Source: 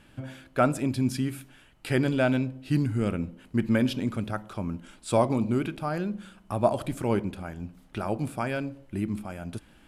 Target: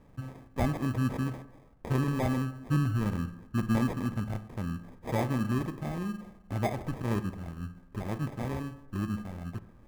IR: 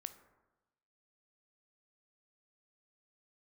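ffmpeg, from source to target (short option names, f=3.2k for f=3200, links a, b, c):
-filter_complex "[0:a]equalizer=f=560:w=0.51:g=-11.5,acrusher=samples=31:mix=1:aa=0.000001,asplit=2[a][b];[1:a]atrim=start_sample=2205,lowpass=2.4k[c];[b][c]afir=irnorm=-1:irlink=0,volume=6.5dB[d];[a][d]amix=inputs=2:normalize=0,volume=-5dB"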